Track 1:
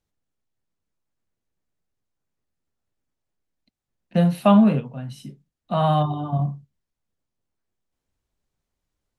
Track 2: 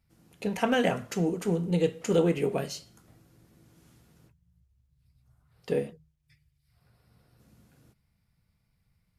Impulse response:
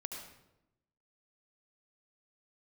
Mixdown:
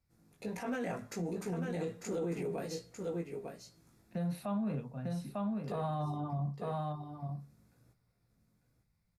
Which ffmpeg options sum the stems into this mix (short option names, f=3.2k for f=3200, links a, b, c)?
-filter_complex "[0:a]alimiter=limit=-11.5dB:level=0:latency=1:release=352,volume=-9dB,asplit=2[a][b];[b]volume=-8.5dB[c];[1:a]flanger=delay=16:depth=3.4:speed=1.4,volume=-4dB,asplit=2[d][e];[e]volume=-8dB[f];[c][f]amix=inputs=2:normalize=0,aecho=0:1:898:1[g];[a][d][g]amix=inputs=3:normalize=0,equalizer=f=3k:t=o:w=0.21:g=-13.5,alimiter=level_in=5dB:limit=-24dB:level=0:latency=1:release=24,volume=-5dB"